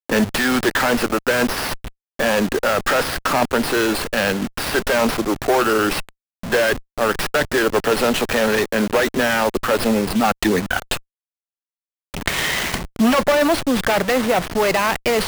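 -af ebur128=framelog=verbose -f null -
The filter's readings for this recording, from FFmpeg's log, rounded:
Integrated loudness:
  I:         -19.0 LUFS
  Threshold: -29.1 LUFS
Loudness range:
  LRA:         2.7 LU
  Threshold: -39.6 LUFS
  LRA low:   -21.2 LUFS
  LRA high:  -18.5 LUFS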